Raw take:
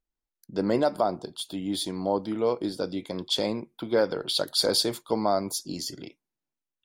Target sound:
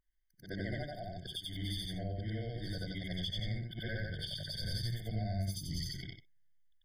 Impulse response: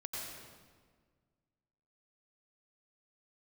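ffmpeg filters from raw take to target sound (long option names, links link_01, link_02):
-filter_complex "[0:a]afftfilt=real='re':imag='-im':win_size=8192:overlap=0.75,equalizer=frequency=125:width_type=o:width=1:gain=-3,equalizer=frequency=250:width_type=o:width=1:gain=-10,equalizer=frequency=500:width_type=o:width=1:gain=-12,equalizer=frequency=2000:width_type=o:width=1:gain=7,equalizer=frequency=8000:width_type=o:width=1:gain=-8,acrossover=split=180[link_01][link_02];[link_02]acompressor=threshold=-44dB:ratio=10[link_03];[link_01][link_03]amix=inputs=2:normalize=0,asubboost=boost=9.5:cutoff=110,afftfilt=real='re*eq(mod(floor(b*sr/1024/740),2),0)':imag='im*eq(mod(floor(b*sr/1024/740),2),0)':win_size=1024:overlap=0.75,volume=6.5dB"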